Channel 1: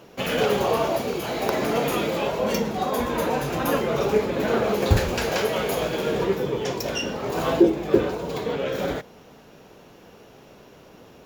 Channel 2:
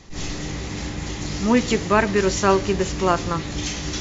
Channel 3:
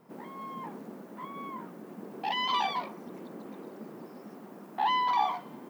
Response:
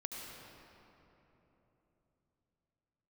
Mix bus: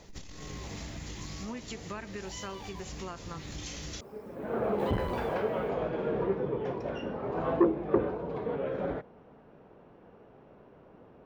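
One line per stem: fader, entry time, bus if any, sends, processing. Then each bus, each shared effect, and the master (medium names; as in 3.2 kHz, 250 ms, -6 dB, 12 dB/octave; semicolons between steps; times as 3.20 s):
-6.0 dB, 0.00 s, no bus, no send, low-pass 1.4 kHz 12 dB/octave; auto duck -23 dB, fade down 0.25 s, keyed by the second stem
-7.0 dB, 0.00 s, bus A, no send, none
-5.5 dB, 0.00 s, bus A, no send, modulation noise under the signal 26 dB
bus A: 0.0 dB, peaking EQ 550 Hz -5.5 dB 2.9 oct; compression 16:1, threshold -36 dBFS, peak gain reduction 14.5 dB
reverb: none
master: transformer saturation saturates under 490 Hz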